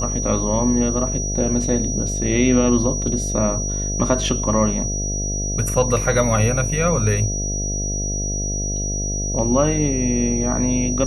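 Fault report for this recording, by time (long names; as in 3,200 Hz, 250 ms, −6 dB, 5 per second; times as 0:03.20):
mains buzz 50 Hz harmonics 14 −25 dBFS
whistle 5,800 Hz −25 dBFS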